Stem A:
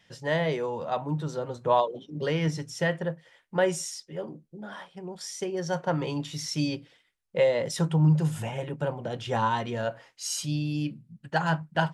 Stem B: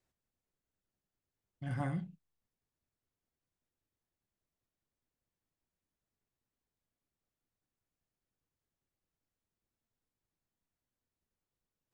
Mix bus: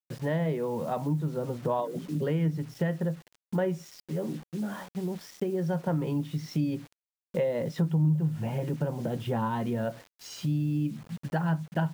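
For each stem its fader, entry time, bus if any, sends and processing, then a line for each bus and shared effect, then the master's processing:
0.0 dB, 0.00 s, no send, Bessel low-pass 2500 Hz, order 2
-9.5 dB, 0.00 s, no send, Chebyshev high-pass 160 Hz, order 6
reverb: off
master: bell 200 Hz +11.5 dB 2 oct; bit-crush 8-bit; compressor 2.5:1, threshold -29 dBFS, peak gain reduction 14 dB

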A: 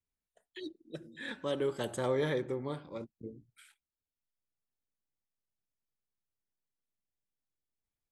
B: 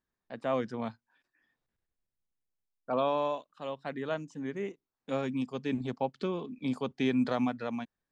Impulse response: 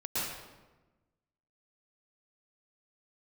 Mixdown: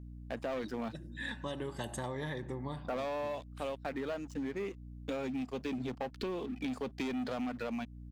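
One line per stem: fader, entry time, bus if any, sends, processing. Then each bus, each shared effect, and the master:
+1.0 dB, 0.00 s, no send, comb 1.1 ms, depth 55%
-3.5 dB, 0.00 s, no send, thirty-one-band EQ 100 Hz -4 dB, 160 Hz -11 dB, 1000 Hz -4 dB, 2500 Hz +4 dB; sample leveller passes 3; hum 60 Hz, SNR 16 dB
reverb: off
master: compressor, threshold -35 dBFS, peak gain reduction 10.5 dB

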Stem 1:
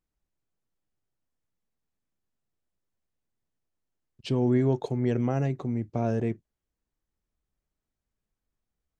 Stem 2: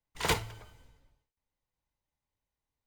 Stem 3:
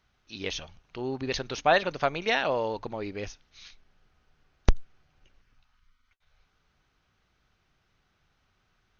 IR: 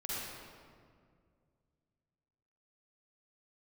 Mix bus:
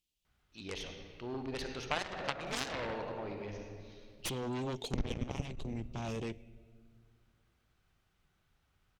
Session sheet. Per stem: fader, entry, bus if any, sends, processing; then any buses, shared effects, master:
+1.0 dB, 0.00 s, send -23 dB, resonant high shelf 2100 Hz +12 dB, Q 3; soft clip -16 dBFS, distortion -20 dB
-9.0 dB, 2.30 s, no send, dry
-0.5 dB, 0.25 s, send -5 dB, tone controls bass +3 dB, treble -4 dB; auto duck -18 dB, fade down 1.05 s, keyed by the first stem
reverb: on, RT60 2.1 s, pre-delay 41 ms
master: added harmonics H 3 -12 dB, 5 -35 dB, 6 -27 dB, 7 -20 dB, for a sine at -5.5 dBFS; compressor 4:1, threshold -32 dBFS, peak gain reduction 16 dB

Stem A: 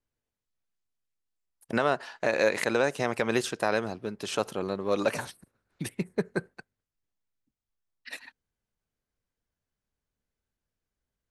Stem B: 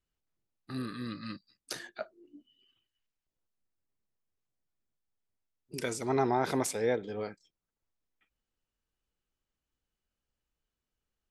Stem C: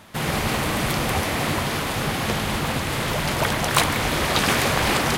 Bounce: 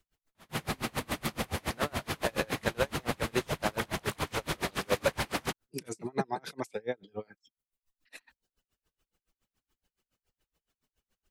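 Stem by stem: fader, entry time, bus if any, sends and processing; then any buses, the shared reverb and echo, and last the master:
-1.5 dB, 0.00 s, no bus, no send, dry
+3.0 dB, 0.00 s, bus A, no send, reverb removal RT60 0.7 s; three-band squash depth 40%
-4.0 dB, 0.35 s, bus A, no send, dry
bus A: 0.0 dB, limiter -19 dBFS, peak gain reduction 10.5 dB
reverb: off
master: dB-linear tremolo 7.1 Hz, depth 33 dB

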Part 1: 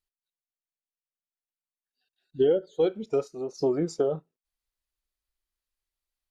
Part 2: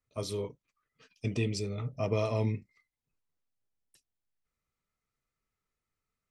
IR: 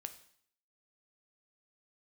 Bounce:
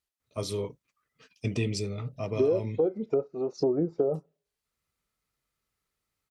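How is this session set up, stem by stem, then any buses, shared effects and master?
+2.5 dB, 0.00 s, send -24 dB, treble ducked by the level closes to 780 Hz, closed at -24.5 dBFS
+3.0 dB, 0.20 s, no send, auto duck -6 dB, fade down 0.55 s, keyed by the first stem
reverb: on, RT60 0.60 s, pre-delay 3 ms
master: HPF 47 Hz; compressor 2.5:1, threshold -23 dBFS, peak gain reduction 6 dB

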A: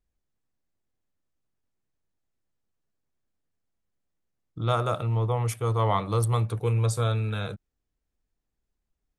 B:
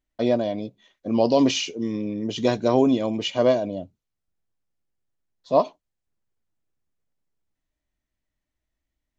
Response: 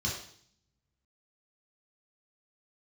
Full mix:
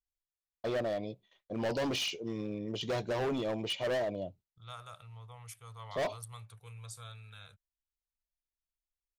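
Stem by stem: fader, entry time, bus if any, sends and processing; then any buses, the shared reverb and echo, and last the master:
-11.5 dB, 0.00 s, no send, passive tone stack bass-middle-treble 10-0-10
-4.5 dB, 0.45 s, no send, gate with hold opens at -46 dBFS; fifteen-band EQ 250 Hz -11 dB, 1600 Hz -4 dB, 6300 Hz -6 dB; hard clip -25 dBFS, distortion -5 dB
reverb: off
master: dry

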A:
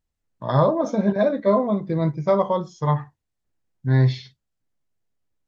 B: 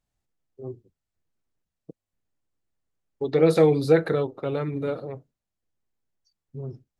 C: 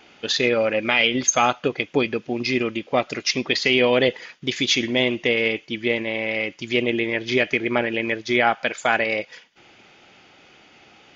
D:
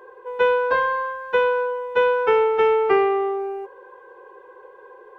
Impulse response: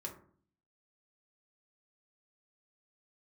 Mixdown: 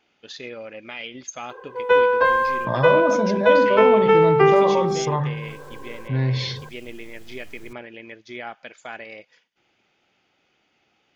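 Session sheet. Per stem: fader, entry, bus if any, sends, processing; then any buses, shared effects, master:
-5.5 dB, 2.25 s, no send, notches 50/100/150/200 Hz; fast leveller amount 70%
-19.5 dB, 1.05 s, no send, dry
-16.0 dB, 0.00 s, no send, dry
+2.5 dB, 1.50 s, no send, dry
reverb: off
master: dry

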